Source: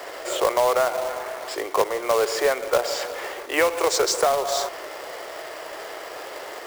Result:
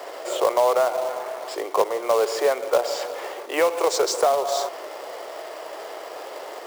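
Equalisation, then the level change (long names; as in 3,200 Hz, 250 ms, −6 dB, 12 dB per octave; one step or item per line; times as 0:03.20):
high-pass filter 660 Hz 6 dB per octave
parametric band 1,700 Hz −7.5 dB 1.3 octaves
high-shelf EQ 2,300 Hz −10 dB
+6.5 dB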